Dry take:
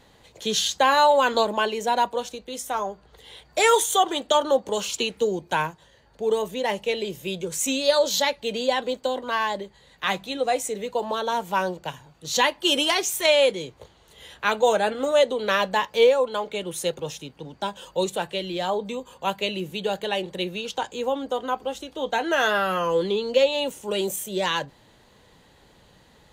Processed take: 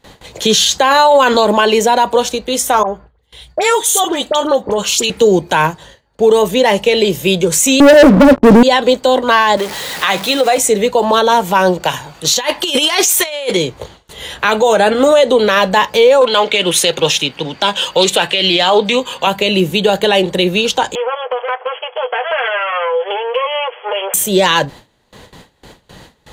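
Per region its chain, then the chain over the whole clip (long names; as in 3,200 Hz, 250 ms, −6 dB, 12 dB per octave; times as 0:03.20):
0:02.83–0:05.10: downward compressor 5 to 1, threshold −28 dBFS + all-pass dispersion highs, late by 50 ms, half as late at 1,800 Hz + multiband upward and downward expander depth 70%
0:07.80–0:08.63: inverse Chebyshev low-pass filter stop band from 2,800 Hz, stop band 70 dB + parametric band 260 Hz +13.5 dB 0.73 octaves + leveller curve on the samples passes 5
0:09.57–0:10.58: converter with a step at zero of −35.5 dBFS + high-pass filter 400 Hz 6 dB per octave + downward compressor 5 to 1, threshold −25 dBFS
0:11.80–0:13.57: low-shelf EQ 380 Hz −9 dB + compressor whose output falls as the input rises −28 dBFS, ratio −0.5
0:16.21–0:19.27: high-pass filter 180 Hz 6 dB per octave + parametric band 2,900 Hz +10.5 dB 1.8 octaves + highs frequency-modulated by the lows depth 0.13 ms
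0:20.95–0:24.14: lower of the sound and its delayed copy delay 8.1 ms + linear-phase brick-wall band-pass 410–3,400 Hz + downward compressor 3 to 1, threshold −34 dBFS
whole clip: noise gate with hold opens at −44 dBFS; boost into a limiter +18.5 dB; level −1 dB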